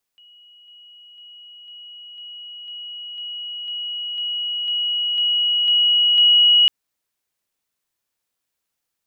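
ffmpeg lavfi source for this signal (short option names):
-f lavfi -i "aevalsrc='pow(10,(-46+3*floor(t/0.5))/20)*sin(2*PI*2910*t)':d=6.5:s=44100"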